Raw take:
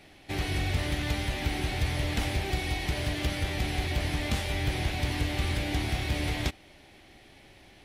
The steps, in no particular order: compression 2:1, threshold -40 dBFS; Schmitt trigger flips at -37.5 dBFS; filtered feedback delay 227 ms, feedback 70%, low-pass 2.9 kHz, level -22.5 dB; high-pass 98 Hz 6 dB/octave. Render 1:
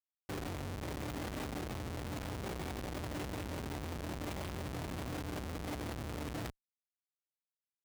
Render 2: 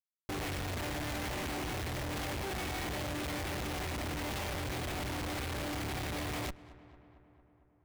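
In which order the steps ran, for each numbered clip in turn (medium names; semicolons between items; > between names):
filtered feedback delay > compression > Schmitt trigger > high-pass; high-pass > Schmitt trigger > filtered feedback delay > compression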